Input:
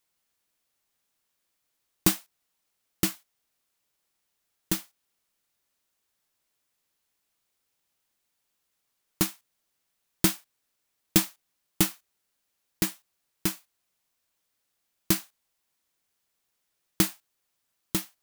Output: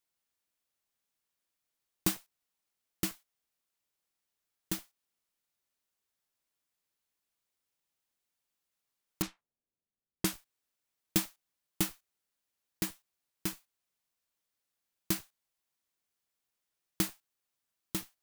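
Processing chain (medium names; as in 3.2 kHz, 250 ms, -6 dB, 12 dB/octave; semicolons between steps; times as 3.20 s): 9.22–10.34 s: level-controlled noise filter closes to 390 Hz, open at -23.5 dBFS; in parallel at -11 dB: Schmitt trigger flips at -34 dBFS; on the sum: trim -8 dB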